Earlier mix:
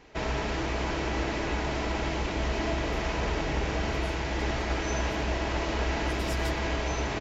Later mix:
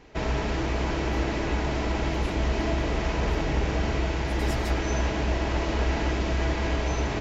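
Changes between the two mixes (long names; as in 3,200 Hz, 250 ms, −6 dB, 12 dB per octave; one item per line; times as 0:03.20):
speech: entry −1.80 s
master: add low-shelf EQ 420 Hz +5 dB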